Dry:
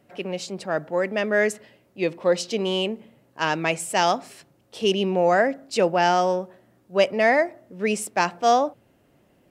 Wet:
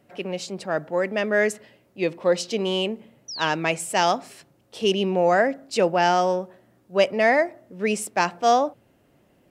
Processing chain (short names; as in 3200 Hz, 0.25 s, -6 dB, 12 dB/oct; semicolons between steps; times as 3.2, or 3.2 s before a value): painted sound fall, 3.28–3.48, 2900–6100 Hz -34 dBFS